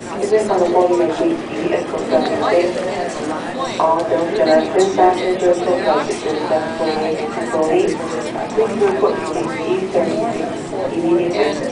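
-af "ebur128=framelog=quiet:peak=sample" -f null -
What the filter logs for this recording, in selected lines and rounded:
Integrated loudness:
  I:         -17.4 LUFS
  Threshold: -27.4 LUFS
Loudness range:
  LRA:         2.5 LU
  Threshold: -37.4 LUFS
  LRA low:   -18.5 LUFS
  LRA high:  -16.1 LUFS
Sample peak:
  Peak:       -1.6 dBFS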